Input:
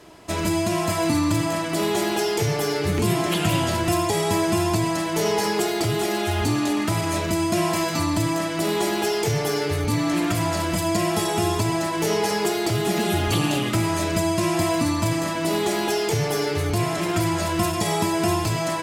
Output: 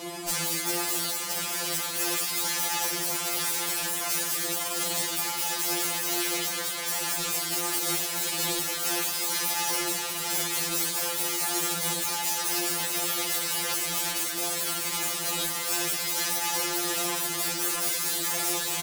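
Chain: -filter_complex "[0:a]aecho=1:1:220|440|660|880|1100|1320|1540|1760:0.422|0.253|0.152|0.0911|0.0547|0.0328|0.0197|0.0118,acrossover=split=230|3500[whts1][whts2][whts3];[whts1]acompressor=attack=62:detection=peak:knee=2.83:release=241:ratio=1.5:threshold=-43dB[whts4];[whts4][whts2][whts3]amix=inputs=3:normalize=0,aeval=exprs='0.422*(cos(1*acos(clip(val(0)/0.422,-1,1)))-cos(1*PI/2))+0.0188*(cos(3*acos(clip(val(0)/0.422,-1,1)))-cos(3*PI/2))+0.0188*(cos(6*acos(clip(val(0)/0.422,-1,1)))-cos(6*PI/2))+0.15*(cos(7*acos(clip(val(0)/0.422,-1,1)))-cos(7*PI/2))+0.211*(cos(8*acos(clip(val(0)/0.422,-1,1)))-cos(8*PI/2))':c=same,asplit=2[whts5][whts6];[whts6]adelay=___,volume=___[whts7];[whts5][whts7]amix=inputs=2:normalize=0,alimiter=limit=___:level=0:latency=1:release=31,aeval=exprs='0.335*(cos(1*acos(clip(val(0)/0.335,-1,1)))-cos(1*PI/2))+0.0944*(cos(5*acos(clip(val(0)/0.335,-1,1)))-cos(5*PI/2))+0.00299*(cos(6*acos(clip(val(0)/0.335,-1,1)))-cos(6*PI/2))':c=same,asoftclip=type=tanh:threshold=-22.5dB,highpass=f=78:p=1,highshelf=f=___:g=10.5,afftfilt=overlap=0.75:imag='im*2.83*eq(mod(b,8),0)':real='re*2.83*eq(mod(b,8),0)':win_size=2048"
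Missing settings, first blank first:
14, -11dB, -9.5dB, 5700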